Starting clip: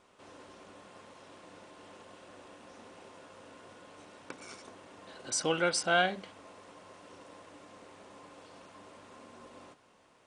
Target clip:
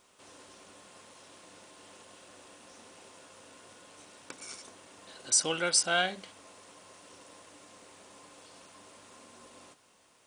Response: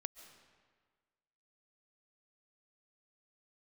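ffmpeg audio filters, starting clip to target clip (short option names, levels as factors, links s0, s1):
-af "crystalizer=i=3.5:c=0,volume=0.668"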